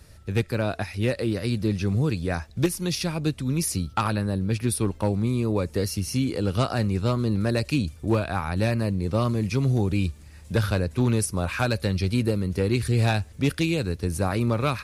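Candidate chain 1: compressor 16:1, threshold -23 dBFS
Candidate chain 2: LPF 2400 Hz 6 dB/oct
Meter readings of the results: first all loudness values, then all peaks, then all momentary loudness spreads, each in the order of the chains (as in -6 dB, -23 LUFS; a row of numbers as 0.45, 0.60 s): -29.5, -26.0 LUFS; -14.0, -12.5 dBFS; 3, 4 LU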